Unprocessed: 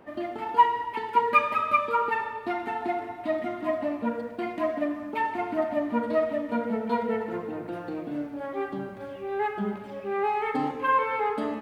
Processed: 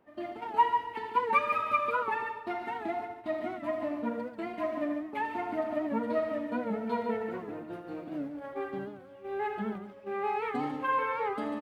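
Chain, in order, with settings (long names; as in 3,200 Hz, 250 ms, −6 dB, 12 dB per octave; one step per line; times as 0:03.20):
noise gate −34 dBFS, range −9 dB
loudspeakers that aren't time-aligned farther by 28 metres −11 dB, 49 metres −8 dB
wow of a warped record 78 rpm, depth 100 cents
level −5.5 dB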